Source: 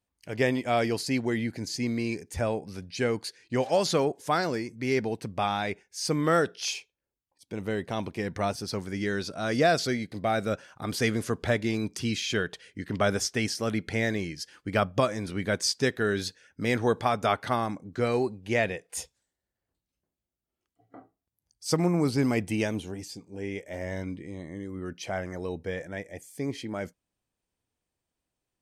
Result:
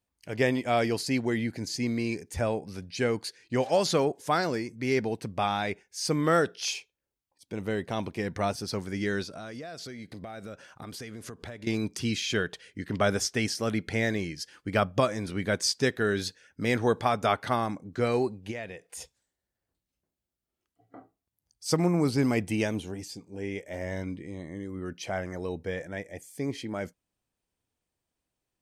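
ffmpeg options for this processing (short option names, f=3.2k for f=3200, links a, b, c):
-filter_complex "[0:a]asettb=1/sr,asplit=3[a][b][c];[a]atrim=end=9.234[d];[b]atrim=start=9.23:end=11.67,asetpts=PTS-STARTPTS,afade=t=in:d=0.004:c=qsin,afade=t=out:st=2.436:d=0.004:c=qsin,acompressor=threshold=-37dB:ratio=12:attack=3.2:release=140:knee=1:detection=peak[e];[c]atrim=start=11.666[f];[d][e]acrossfade=d=0.004:c1=hsin:c2=qsin[g];[g][f]acrossfade=d=0.004:c1=qsin:c2=hsin,asplit=3[h][i][j];[h]afade=t=out:st=18.5:d=0.02[k];[i]acompressor=threshold=-43dB:ratio=2:attack=3.2:release=140:knee=1:detection=peak,afade=t=in:st=18.5:d=0.02,afade=t=out:st=19:d=0.02[l];[j]afade=t=in:st=19:d=0.02[m];[k][l][m]amix=inputs=3:normalize=0"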